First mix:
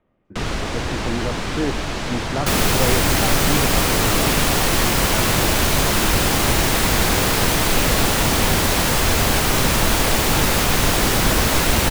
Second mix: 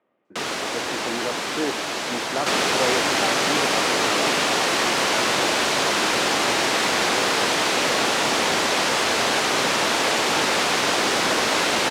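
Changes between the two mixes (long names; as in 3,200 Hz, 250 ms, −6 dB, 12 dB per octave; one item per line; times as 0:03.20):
first sound: remove high-frequency loss of the air 90 metres
master: add band-pass filter 340–6,200 Hz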